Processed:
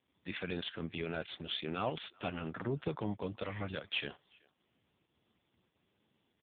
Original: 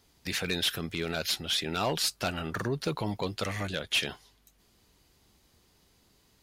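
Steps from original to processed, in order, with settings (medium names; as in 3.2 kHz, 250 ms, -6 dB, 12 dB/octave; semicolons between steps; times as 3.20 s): volume shaper 95 bpm, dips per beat 1, -7 dB, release 127 ms; speakerphone echo 380 ms, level -25 dB; trim -4 dB; AMR-NB 5.15 kbps 8 kHz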